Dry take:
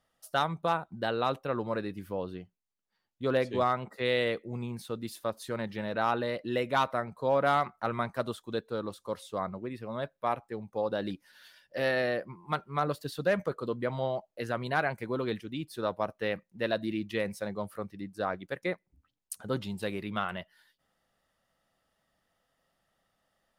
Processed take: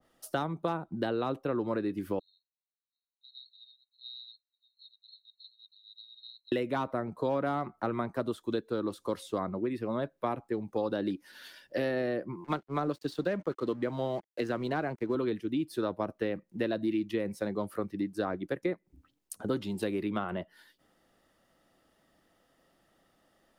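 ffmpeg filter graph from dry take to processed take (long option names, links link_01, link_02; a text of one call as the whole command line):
ffmpeg -i in.wav -filter_complex "[0:a]asettb=1/sr,asplit=3[link_01][link_02][link_03];[link_01]atrim=end=2.194[link_04];[link_02]atrim=start=2.19:end=6.52,asetpts=PTS-STARTPTS,afade=type=in:duration=0.004:curve=qsin,afade=type=out:start_time=4.326:duration=0.004:curve=qsin,asuperpass=centerf=4000:order=20:qfactor=6.3,aderivative[link_05];[link_03]atrim=start=6.516[link_06];[link_04][link_05]acrossfade=duration=0.004:curve1=hsin:curve2=qsin[link_07];[link_07][link_06]acrossfade=duration=0.004:curve1=qsin:curve2=hsin,asettb=1/sr,asplit=3[link_08][link_09][link_10];[link_08]atrim=end=12.444[link_11];[link_09]atrim=start=12.44:end=15.15,asetpts=PTS-STARTPTS,afade=type=in:duration=0.004:curve=qsin,afade=type=out:start_time=2.706:duration=0.004:curve=qsin,highpass=110,lowpass=5100,aemphasis=mode=production:type=50kf,aeval=exprs='sgn(val(0))*max(abs(val(0))-0.00251,0)':channel_layout=same[link_12];[link_10]atrim=start=15.146[link_13];[link_11][link_12]acrossfade=duration=0.004:curve1=hsin:curve2=qsin[link_14];[link_14][link_13]acrossfade=duration=0.004:curve1=qsin:curve2=hsin,equalizer=frequency=320:width_type=o:width=0.9:gain=11,acrossover=split=240|1200[link_15][link_16][link_17];[link_15]acompressor=threshold=-44dB:ratio=4[link_18];[link_16]acompressor=threshold=-38dB:ratio=4[link_19];[link_17]acompressor=threshold=-47dB:ratio=4[link_20];[link_18][link_19][link_20]amix=inputs=3:normalize=0,adynamicequalizer=threshold=0.00224:dfrequency=1700:dqfactor=0.7:tfrequency=1700:tqfactor=0.7:attack=5:release=100:ratio=0.375:range=3:mode=cutabove:tftype=highshelf,volume=5.5dB" out.wav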